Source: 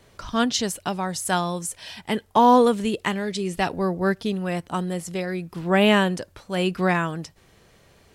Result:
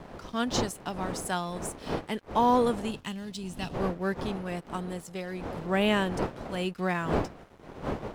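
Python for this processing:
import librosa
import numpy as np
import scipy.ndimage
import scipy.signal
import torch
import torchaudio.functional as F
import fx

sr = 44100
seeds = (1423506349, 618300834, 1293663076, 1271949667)

y = fx.dmg_wind(x, sr, seeds[0], corner_hz=600.0, level_db=-29.0)
y = np.sign(y) * np.maximum(np.abs(y) - 10.0 ** (-43.0 / 20.0), 0.0)
y = fx.spec_box(y, sr, start_s=2.91, length_s=0.84, low_hz=280.0, high_hz=2500.0, gain_db=-8)
y = y * librosa.db_to_amplitude(-7.5)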